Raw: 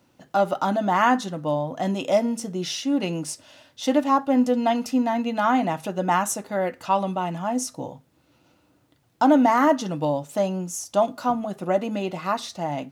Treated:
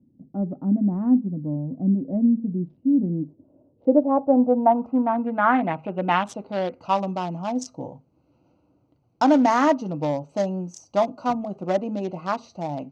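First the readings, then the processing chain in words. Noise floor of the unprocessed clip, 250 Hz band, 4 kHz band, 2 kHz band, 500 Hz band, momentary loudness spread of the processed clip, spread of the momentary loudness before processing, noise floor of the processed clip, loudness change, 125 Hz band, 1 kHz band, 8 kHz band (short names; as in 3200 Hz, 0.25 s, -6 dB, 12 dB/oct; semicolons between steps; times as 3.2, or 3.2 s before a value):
-63 dBFS, +2.0 dB, -7.0 dB, -1.5 dB, -0.5 dB, 11 LU, 9 LU, -64 dBFS, +0.5 dB, +3.0 dB, -1.5 dB, -12.0 dB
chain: Wiener smoothing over 25 samples; low-pass sweep 240 Hz -> 5900 Hz, 3.07–6.94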